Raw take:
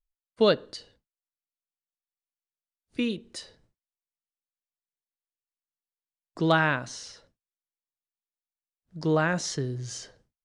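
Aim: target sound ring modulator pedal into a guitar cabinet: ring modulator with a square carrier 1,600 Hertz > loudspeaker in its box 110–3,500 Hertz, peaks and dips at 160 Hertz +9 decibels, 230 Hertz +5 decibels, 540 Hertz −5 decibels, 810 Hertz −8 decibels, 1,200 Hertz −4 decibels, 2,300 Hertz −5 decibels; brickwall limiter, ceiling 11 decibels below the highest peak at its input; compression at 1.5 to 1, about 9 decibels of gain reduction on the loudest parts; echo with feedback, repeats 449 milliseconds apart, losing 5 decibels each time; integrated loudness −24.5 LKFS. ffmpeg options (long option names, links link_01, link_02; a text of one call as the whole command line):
ffmpeg -i in.wav -af "acompressor=threshold=-42dB:ratio=1.5,alimiter=level_in=4dB:limit=-24dB:level=0:latency=1,volume=-4dB,aecho=1:1:449|898|1347|1796|2245|2694|3143:0.562|0.315|0.176|0.0988|0.0553|0.031|0.0173,aeval=exprs='val(0)*sgn(sin(2*PI*1600*n/s))':channel_layout=same,highpass=110,equalizer=frequency=160:width_type=q:width=4:gain=9,equalizer=frequency=230:width_type=q:width=4:gain=5,equalizer=frequency=540:width_type=q:width=4:gain=-5,equalizer=frequency=810:width_type=q:width=4:gain=-8,equalizer=frequency=1200:width_type=q:width=4:gain=-4,equalizer=frequency=2300:width_type=q:width=4:gain=-5,lowpass=frequency=3500:width=0.5412,lowpass=frequency=3500:width=1.3066,volume=18.5dB" out.wav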